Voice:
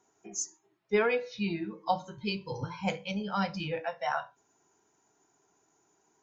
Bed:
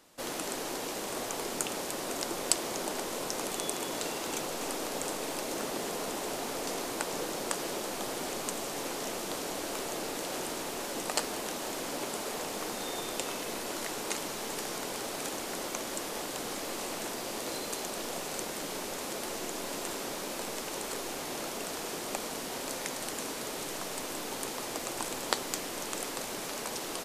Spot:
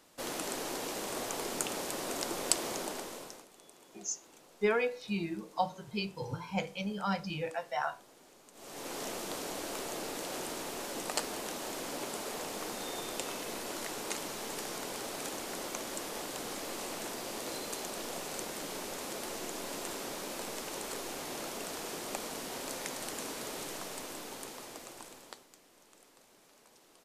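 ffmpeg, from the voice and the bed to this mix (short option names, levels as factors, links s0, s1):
-filter_complex "[0:a]adelay=3700,volume=0.75[s0];[1:a]volume=8.91,afade=t=out:st=2.69:d=0.77:silence=0.0794328,afade=t=in:st=8.53:d=0.46:silence=0.0944061,afade=t=out:st=23.58:d=1.9:silence=0.0794328[s1];[s0][s1]amix=inputs=2:normalize=0"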